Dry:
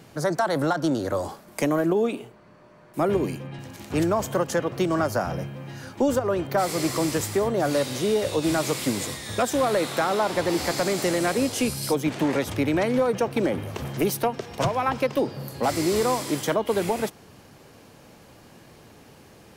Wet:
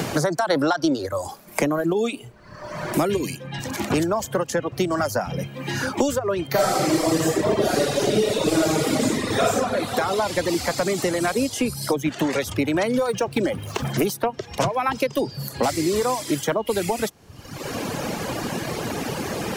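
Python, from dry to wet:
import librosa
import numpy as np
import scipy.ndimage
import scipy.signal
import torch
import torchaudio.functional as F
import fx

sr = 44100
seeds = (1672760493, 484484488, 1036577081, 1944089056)

y = fx.spec_box(x, sr, start_s=0.51, length_s=0.55, low_hz=250.0, high_hz=6000.0, gain_db=9)
y = fx.reverb_throw(y, sr, start_s=6.5, length_s=3.03, rt60_s=2.4, drr_db=-11.0)
y = fx.median_filter(y, sr, points=3, at=(13.07, 13.9))
y = fx.dereverb_blind(y, sr, rt60_s=1.1)
y = fx.peak_eq(y, sr, hz=6500.0, db=2.5, octaves=0.77)
y = fx.band_squash(y, sr, depth_pct=100)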